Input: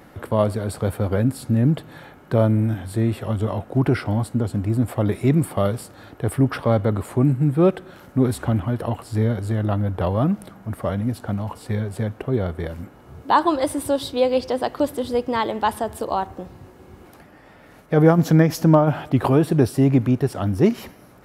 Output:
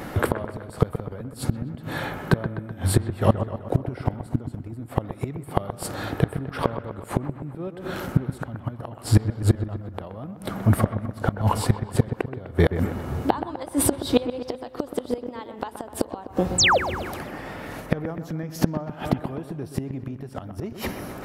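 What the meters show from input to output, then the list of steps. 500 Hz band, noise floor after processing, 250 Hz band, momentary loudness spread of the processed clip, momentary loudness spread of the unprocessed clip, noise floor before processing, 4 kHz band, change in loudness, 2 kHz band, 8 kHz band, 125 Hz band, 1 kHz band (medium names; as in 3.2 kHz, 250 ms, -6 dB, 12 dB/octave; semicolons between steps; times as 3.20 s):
-6.5 dB, -43 dBFS, -6.5 dB, 13 LU, 11 LU, -48 dBFS, +5.0 dB, -5.5 dB, +2.0 dB, +6.5 dB, -4.5 dB, -4.5 dB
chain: in parallel at -2 dB: compression 4:1, threshold -26 dBFS, peak gain reduction 14.5 dB; on the sum: painted sound fall, 16.58–16.78 s, 430–8800 Hz -24 dBFS; inverted gate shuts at -13 dBFS, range -26 dB; feedback echo behind a low-pass 126 ms, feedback 57%, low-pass 2.3 kHz, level -10 dB; trim +7 dB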